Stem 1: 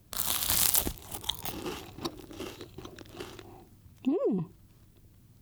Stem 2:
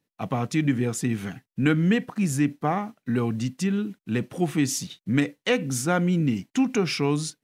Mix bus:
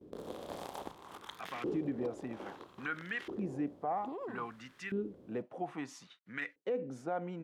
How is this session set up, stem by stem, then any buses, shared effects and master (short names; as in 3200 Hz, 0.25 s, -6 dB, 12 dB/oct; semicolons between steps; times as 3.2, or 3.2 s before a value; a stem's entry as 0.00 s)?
-4.0 dB, 0.00 s, no send, per-bin compression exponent 0.6; gate with hold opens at -35 dBFS; low shelf 200 Hz +9.5 dB
-1.5 dB, 1.20 s, no send, dry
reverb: off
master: LFO band-pass saw up 0.61 Hz 370–2000 Hz; limiter -27 dBFS, peak gain reduction 9 dB